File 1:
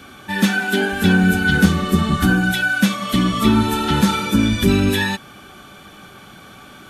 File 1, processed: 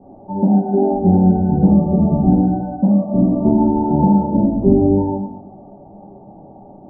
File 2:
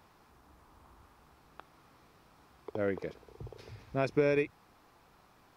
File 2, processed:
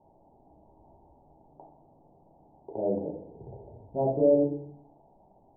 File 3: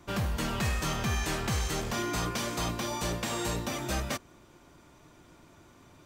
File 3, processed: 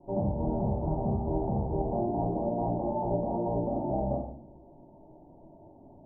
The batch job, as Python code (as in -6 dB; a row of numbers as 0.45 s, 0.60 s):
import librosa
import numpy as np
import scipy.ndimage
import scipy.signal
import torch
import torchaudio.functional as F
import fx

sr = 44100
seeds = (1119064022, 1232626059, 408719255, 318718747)

y = scipy.signal.sosfilt(scipy.signal.cheby1(6, 3, 910.0, 'lowpass', fs=sr, output='sos'), x)
y = fx.low_shelf(y, sr, hz=310.0, db=-9.5)
y = fx.room_shoebox(y, sr, seeds[0], volume_m3=72.0, walls='mixed', distance_m=1.1)
y = y * 10.0 ** (4.5 / 20.0)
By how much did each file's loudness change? +2.0 LU, +5.0 LU, +1.0 LU